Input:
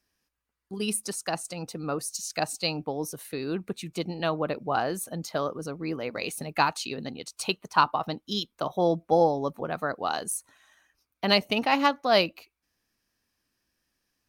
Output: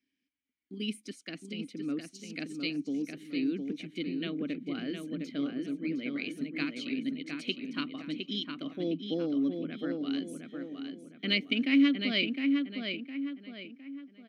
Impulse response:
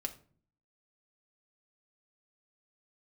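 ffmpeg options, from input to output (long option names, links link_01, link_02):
-filter_complex "[0:a]asplit=3[link_01][link_02][link_03];[link_01]bandpass=frequency=270:width_type=q:width=8,volume=0dB[link_04];[link_02]bandpass=frequency=2290:width_type=q:width=8,volume=-6dB[link_05];[link_03]bandpass=frequency=3010:width_type=q:width=8,volume=-9dB[link_06];[link_04][link_05][link_06]amix=inputs=3:normalize=0,asplit=2[link_07][link_08];[link_08]adelay=710,lowpass=frequency=3000:poles=1,volume=-4.5dB,asplit=2[link_09][link_10];[link_10]adelay=710,lowpass=frequency=3000:poles=1,volume=0.41,asplit=2[link_11][link_12];[link_12]adelay=710,lowpass=frequency=3000:poles=1,volume=0.41,asplit=2[link_13][link_14];[link_14]adelay=710,lowpass=frequency=3000:poles=1,volume=0.41,asplit=2[link_15][link_16];[link_16]adelay=710,lowpass=frequency=3000:poles=1,volume=0.41[link_17];[link_07][link_09][link_11][link_13][link_15][link_17]amix=inputs=6:normalize=0,volume=8dB"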